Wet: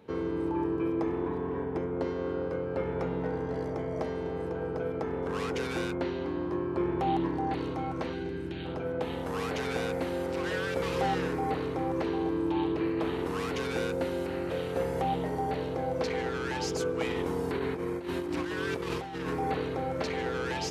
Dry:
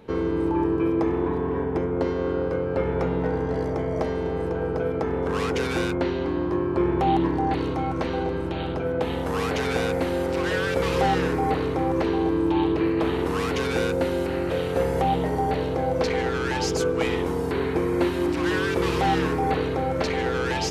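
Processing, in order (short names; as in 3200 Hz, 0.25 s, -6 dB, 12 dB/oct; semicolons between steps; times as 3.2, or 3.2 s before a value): 8.13–8.66 spectral gain 440–1400 Hz -10 dB; 17.09–19.3 negative-ratio compressor -25 dBFS, ratio -0.5; HPF 79 Hz; gain -7 dB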